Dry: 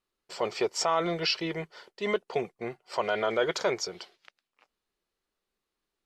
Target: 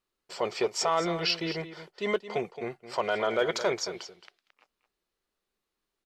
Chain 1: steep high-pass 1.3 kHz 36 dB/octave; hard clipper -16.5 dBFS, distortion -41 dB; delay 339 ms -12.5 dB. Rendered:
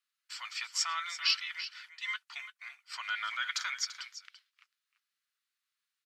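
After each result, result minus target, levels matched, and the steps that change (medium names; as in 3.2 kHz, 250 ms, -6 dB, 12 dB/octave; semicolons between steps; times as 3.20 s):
echo 119 ms late; 1 kHz band -4.0 dB
change: delay 220 ms -12.5 dB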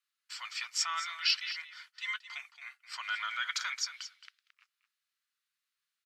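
1 kHz band -4.0 dB
remove: steep high-pass 1.3 kHz 36 dB/octave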